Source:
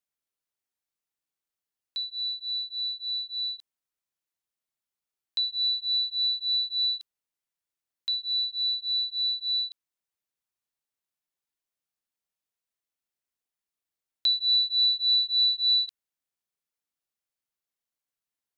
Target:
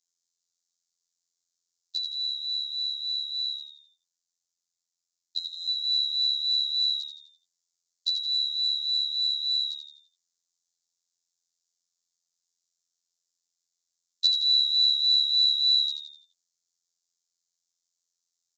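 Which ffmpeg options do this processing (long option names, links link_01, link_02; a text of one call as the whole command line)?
ffmpeg -i in.wav -filter_complex "[0:a]aecho=1:1:7.2:0.66,acrusher=bits=7:mode=log:mix=0:aa=0.000001,asettb=1/sr,asplit=3[link_01][link_02][link_03];[link_01]atrim=end=3.544[link_04];[link_02]atrim=start=3.54:end=5.68,asetpts=PTS-STARTPTS,afade=type=in:duration=0.004:curve=qsin,afade=type=out:start_time=2.136:duration=0.004:curve=qsin,aeval=exprs='val(0)*sin(2*PI*59*n/s)':channel_layout=same[link_05];[link_03]atrim=start=5.676[link_06];[link_04][link_05]acrossfade=duration=0.004:curve1=hsin:curve2=qsin[link_07];[link_07][link_06]acrossfade=duration=0.004:curve1=qsin:curve2=hsin,afftfilt=real='hypot(re,im)*cos(PI*b)':imag='0':win_size=2048:overlap=0.75,aexciter=amount=14.3:drive=4.2:freq=4000,asplit=6[link_08][link_09][link_10][link_11][link_12][link_13];[link_09]adelay=84,afreqshift=-73,volume=-6.5dB[link_14];[link_10]adelay=168,afreqshift=-146,volume=-13.6dB[link_15];[link_11]adelay=252,afreqshift=-219,volume=-20.8dB[link_16];[link_12]adelay=336,afreqshift=-292,volume=-27.9dB[link_17];[link_13]adelay=420,afreqshift=-365,volume=-35dB[link_18];[link_08][link_14][link_15][link_16][link_17][link_18]amix=inputs=6:normalize=0,aresample=16000,aresample=44100,volume=-6dB" out.wav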